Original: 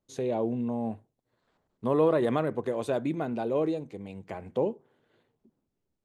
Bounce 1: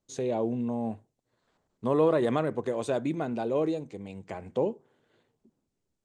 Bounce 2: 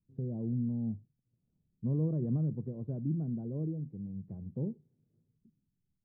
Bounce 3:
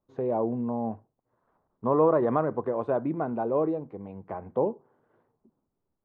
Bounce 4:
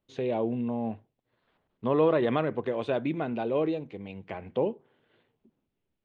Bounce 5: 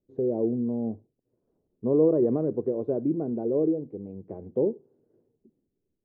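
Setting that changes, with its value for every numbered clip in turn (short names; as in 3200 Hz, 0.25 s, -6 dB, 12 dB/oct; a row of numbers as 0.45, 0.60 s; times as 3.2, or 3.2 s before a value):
synth low-pass, frequency: 7700, 160, 1100, 3000, 400 Hz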